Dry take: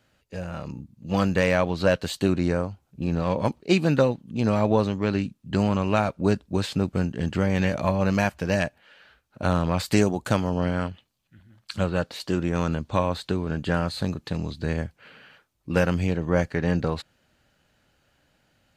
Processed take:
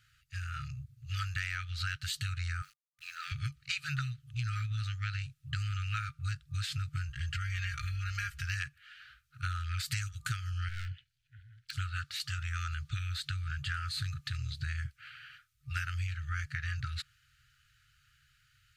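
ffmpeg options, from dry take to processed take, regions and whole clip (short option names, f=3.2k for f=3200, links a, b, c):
-filter_complex "[0:a]asettb=1/sr,asplit=3[a][b][c];[a]atrim=end=2.624[d];[b]atrim=start=2.62:end=3.32,asetpts=PTS-STARTPTS,afade=t=in:d=0.004:c=qsin,afade=t=out:st=0.696:d=0.004:c=qsin,highpass=f=420:w=0.5412,highpass=f=420:w=1.3066,aeval=exprs='val(0)*gte(abs(val(0)),0.00211)':c=same[e];[c]atrim=start=3.316[f];[d][e]acrossfade=d=0.004:c1=hsin:c2=qsin[g];[g][f]acrossfade=d=0.004:c1=qsin:c2=hsin,asettb=1/sr,asplit=3[h][i][j];[h]atrim=end=7.094[k];[i]atrim=start=7.09:end=8.44,asetpts=PTS-STARTPTS,afade=t=in:d=0.004:c=qsin,afade=t=out:st=1.346:d=0.004:c=qsin,lowshelf=f=170:g=8,aecho=1:1:4.3:0.77,atrim=end_sample=59535,acompressor=threshold=-24dB:ratio=2.5:attack=3.2:release=140:knee=1:detection=peak[l];[j]atrim=start=8.436[m];[k][l]acrossfade=d=0.004:c1=hsin:c2=qsin[n];[n][m]acrossfade=d=0.004:c1=qsin:c2=hsin,asettb=1/sr,asplit=3[o][p][q];[o]atrim=end=10.694[r];[p]atrim=start=10.69:end=11.73,asetpts=PTS-STARTPTS,afade=t=in:d=0.004:c=qsin,afade=t=out:st=1.036:d=0.004:c=qsin,aemphasis=mode=reproduction:type=50kf,asoftclip=type=hard:threshold=-29dB,asuperstop=centerf=1000:order=12:qfactor=1.6[s];[q]atrim=start=11.726[t];[r][s]acrossfade=d=0.004:c1=hsin:c2=qsin[u];[u][t]acrossfade=d=0.004:c1=qsin:c2=hsin,afftfilt=real='re*(1-between(b*sr/4096,140,1200))':imag='im*(1-between(b*sr/4096,140,1200))':win_size=4096:overlap=0.75,acompressor=threshold=-32dB:ratio=6"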